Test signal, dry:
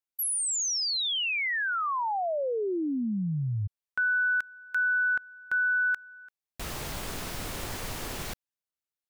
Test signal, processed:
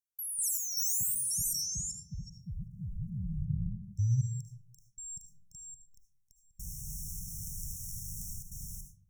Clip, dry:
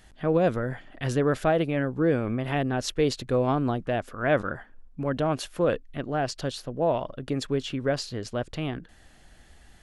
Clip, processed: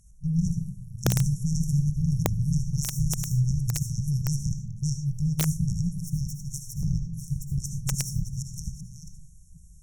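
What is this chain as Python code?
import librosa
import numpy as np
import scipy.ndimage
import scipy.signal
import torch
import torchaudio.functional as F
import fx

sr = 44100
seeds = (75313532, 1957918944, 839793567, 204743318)

p1 = fx.reverse_delay(x, sr, ms=383, wet_db=-1)
p2 = fx.cheby_harmonics(p1, sr, harmonics=(2, 7), levels_db=(-29, -15), full_scale_db=-9.0)
p3 = fx.brickwall_bandstop(p2, sr, low_hz=190.0, high_hz=5400.0)
p4 = fx.over_compress(p3, sr, threshold_db=-37.0, ratio=-0.5)
p5 = p3 + F.gain(torch.from_numpy(p4), -0.5).numpy()
p6 = fx.rev_freeverb(p5, sr, rt60_s=0.81, hf_ratio=0.5, predelay_ms=35, drr_db=4.5)
p7 = (np.mod(10.0 ** (19.0 / 20.0) * p6 + 1.0, 2.0) - 1.0) / 10.0 ** (19.0 / 20.0)
y = F.gain(torch.from_numpy(p7), 5.0).numpy()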